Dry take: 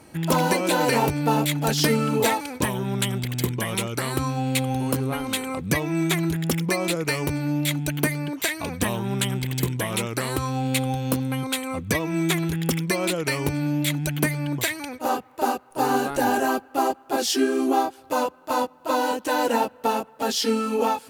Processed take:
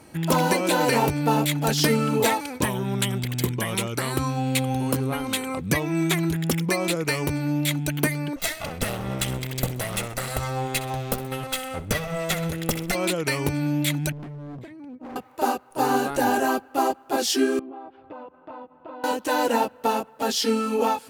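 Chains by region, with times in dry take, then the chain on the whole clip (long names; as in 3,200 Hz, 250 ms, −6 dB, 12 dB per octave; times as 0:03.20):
0:08.36–0:12.95: lower of the sound and its delayed copy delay 1.5 ms + repeating echo 64 ms, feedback 46%, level −16 dB
0:14.12–0:15.16: resonant band-pass 210 Hz, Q 1.7 + gain into a clipping stage and back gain 35 dB
0:17.59–0:19.04: low-pass filter 3,200 Hz 24 dB per octave + high-shelf EQ 2,400 Hz −10.5 dB + downward compressor 8 to 1, threshold −36 dBFS
whole clip: no processing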